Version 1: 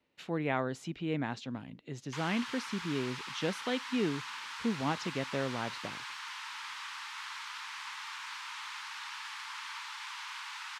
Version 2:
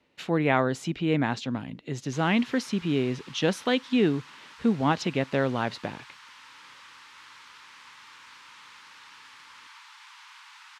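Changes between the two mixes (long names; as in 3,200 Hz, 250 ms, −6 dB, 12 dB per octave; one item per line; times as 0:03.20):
speech +9.0 dB
background −7.0 dB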